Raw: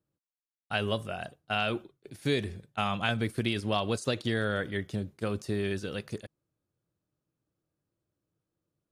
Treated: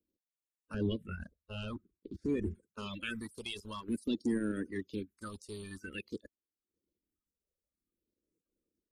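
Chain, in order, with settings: coarse spectral quantiser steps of 30 dB; 0.74–2.55 s: RIAA curve playback; reverb removal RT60 0.54 s; 3.89–4.66 s: graphic EQ 250/500/1000/2000/4000/8000 Hz +10/-4/-8/-6/-5/+4 dB; peak limiter -19 dBFS, peak gain reduction 7.5 dB; transient shaper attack -3 dB, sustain -8 dB; static phaser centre 310 Hz, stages 4; saturation -22.5 dBFS, distortion -26 dB; phase shifter stages 4, 0.5 Hz, lowest notch 280–4400 Hz; trim +1 dB

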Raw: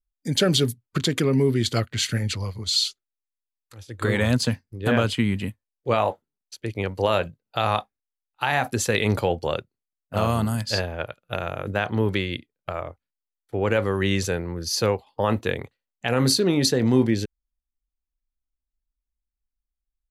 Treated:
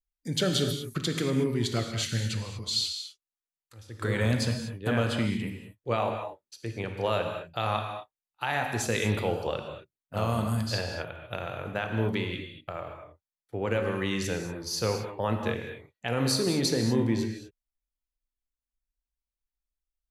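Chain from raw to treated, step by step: gated-style reverb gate 260 ms flat, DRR 4 dB; trim -7 dB

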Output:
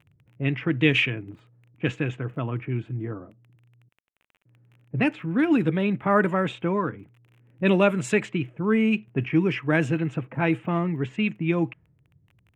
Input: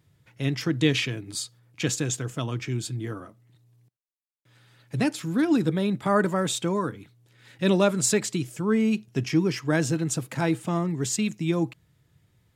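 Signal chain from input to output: level-controlled noise filter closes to 310 Hz, open at -18 dBFS; crackle 24 per s -43 dBFS; resonant high shelf 3.5 kHz -10 dB, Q 3; trim +1 dB

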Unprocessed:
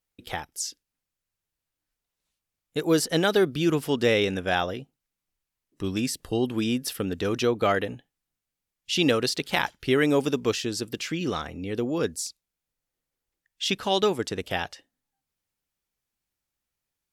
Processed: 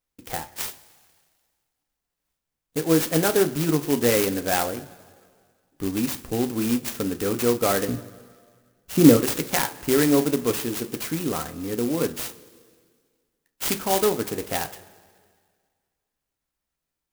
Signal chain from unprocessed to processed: 7.88–9.17 s: tilt shelf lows +10 dB, about 890 Hz; two-slope reverb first 0.25 s, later 1.9 s, from -18 dB, DRR 6 dB; sampling jitter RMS 0.088 ms; trim +1 dB

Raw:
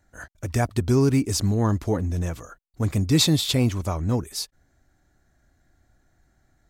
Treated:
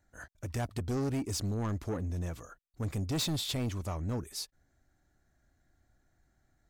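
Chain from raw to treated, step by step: saturation -21 dBFS, distortion -10 dB; trim -7.5 dB

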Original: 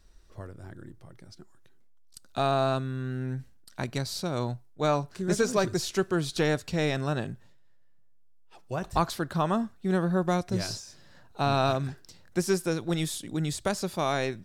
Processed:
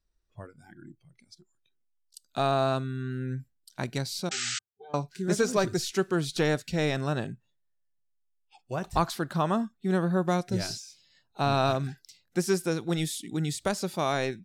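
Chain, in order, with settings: 4.29–4.94 s: pitch-class resonator G, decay 0.17 s; 4.31–4.59 s: painted sound noise 1.2–8.2 kHz -32 dBFS; spectral noise reduction 20 dB

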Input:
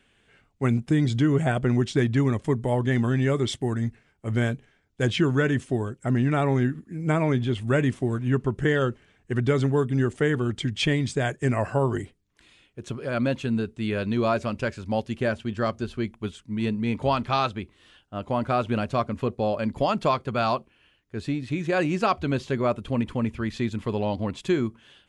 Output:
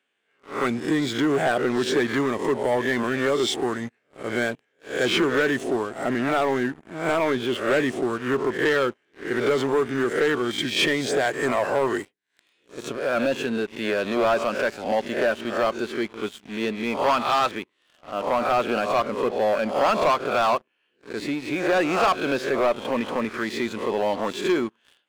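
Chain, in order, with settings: reverse spectral sustain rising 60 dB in 0.45 s; high-pass 370 Hz 12 dB/octave; treble shelf 4.9 kHz -5 dB; waveshaping leveller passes 3; trim -5 dB

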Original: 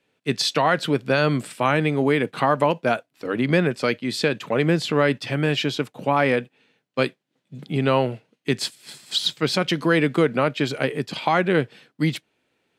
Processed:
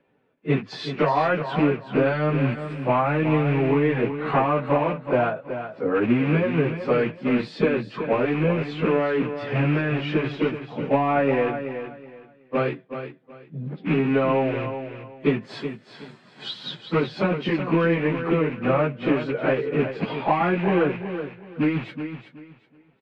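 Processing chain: rattle on loud lows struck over -29 dBFS, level -14 dBFS; low-pass 1.4 kHz 12 dB/octave; compression 10:1, threshold -22 dBFS, peak gain reduction 9.5 dB; plain phase-vocoder stretch 1.8×; on a send: feedback delay 374 ms, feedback 24%, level -9.5 dB; on the sum: trim +8 dB

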